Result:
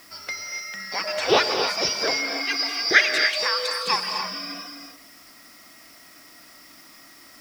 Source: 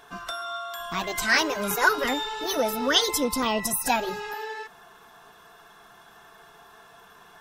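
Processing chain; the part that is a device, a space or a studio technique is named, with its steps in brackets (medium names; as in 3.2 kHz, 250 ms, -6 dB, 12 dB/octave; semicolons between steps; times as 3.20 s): gated-style reverb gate 320 ms rising, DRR 5 dB; split-band scrambled radio (four frequency bands reordered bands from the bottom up 2341; band-pass 400–3100 Hz; white noise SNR 26 dB); trim +7 dB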